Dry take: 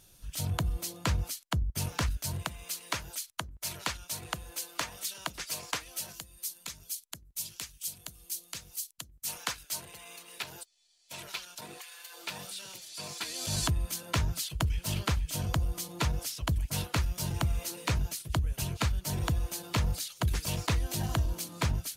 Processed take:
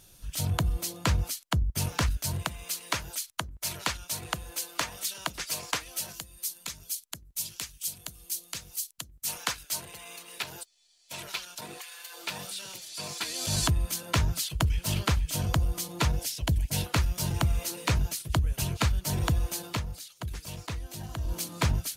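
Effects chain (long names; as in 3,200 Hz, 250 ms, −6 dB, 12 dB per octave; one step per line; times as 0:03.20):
0:16.16–0:16.86: parametric band 1,200 Hz −12 dB 0.4 octaves
0:19.64–0:21.37: duck −10.5 dB, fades 0.19 s
level +3.5 dB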